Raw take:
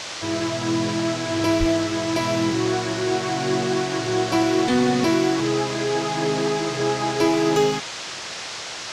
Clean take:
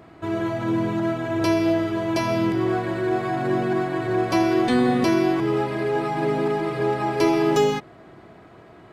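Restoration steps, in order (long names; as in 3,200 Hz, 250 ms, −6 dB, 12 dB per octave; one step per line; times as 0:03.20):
high-pass at the plosives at 0:01.59
noise reduction from a noise print 14 dB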